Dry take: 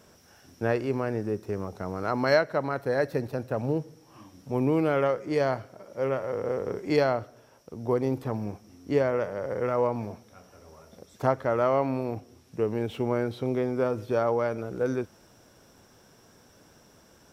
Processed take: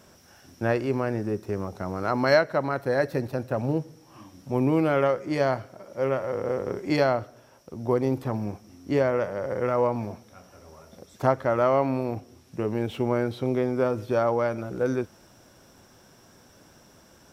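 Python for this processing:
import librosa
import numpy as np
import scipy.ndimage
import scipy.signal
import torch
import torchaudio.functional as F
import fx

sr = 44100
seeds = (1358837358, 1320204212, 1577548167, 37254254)

y = fx.notch(x, sr, hz=450.0, q=12.0)
y = F.gain(torch.from_numpy(y), 2.5).numpy()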